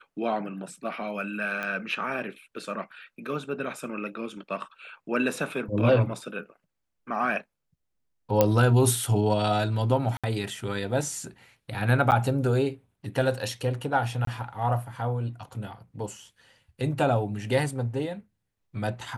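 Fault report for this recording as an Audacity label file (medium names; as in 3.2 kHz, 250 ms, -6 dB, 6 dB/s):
1.630000	1.630000	pop -19 dBFS
8.410000	8.410000	pop -6 dBFS
10.170000	10.240000	dropout 66 ms
12.110000	12.120000	dropout 8.8 ms
14.250000	14.270000	dropout 23 ms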